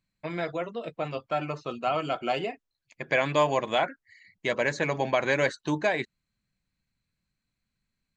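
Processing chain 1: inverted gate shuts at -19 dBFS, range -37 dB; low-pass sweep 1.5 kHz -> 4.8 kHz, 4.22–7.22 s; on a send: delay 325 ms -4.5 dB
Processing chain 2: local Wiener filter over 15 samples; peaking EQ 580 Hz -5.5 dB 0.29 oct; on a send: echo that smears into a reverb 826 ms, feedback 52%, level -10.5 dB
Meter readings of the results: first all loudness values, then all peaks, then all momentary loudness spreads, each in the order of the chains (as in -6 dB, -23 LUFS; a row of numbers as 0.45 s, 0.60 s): -36.5 LUFS, -31.0 LUFS; -14.5 dBFS, -11.0 dBFS; 18 LU, 16 LU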